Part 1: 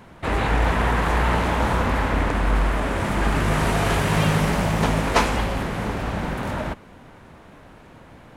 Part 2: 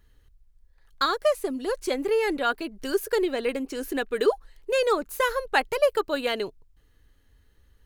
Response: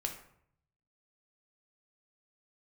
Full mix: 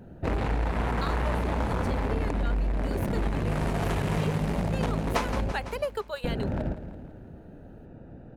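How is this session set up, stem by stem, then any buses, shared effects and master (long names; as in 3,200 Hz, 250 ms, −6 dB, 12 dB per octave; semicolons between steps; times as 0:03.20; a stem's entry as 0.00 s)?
+2.0 dB, 0.00 s, muted 0:05.52–0:06.24, no send, echo send −14 dB, adaptive Wiener filter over 41 samples
−6.0 dB, 0.00 s, no send, no echo send, elliptic high-pass filter 400 Hz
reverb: not used
echo: repeating echo 167 ms, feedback 51%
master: downward compressor 4 to 1, threshold −25 dBFS, peak gain reduction 11.5 dB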